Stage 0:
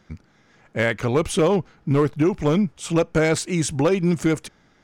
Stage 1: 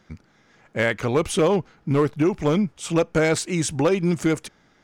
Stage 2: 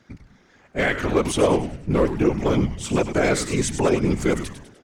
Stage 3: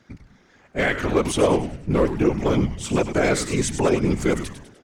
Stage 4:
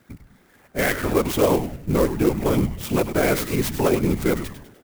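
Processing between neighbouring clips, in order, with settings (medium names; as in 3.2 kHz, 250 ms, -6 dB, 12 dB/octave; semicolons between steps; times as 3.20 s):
bass shelf 160 Hz -4 dB
whisper effect; frequency-shifting echo 100 ms, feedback 47%, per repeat -150 Hz, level -9.5 dB
no audible change
sampling jitter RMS 0.041 ms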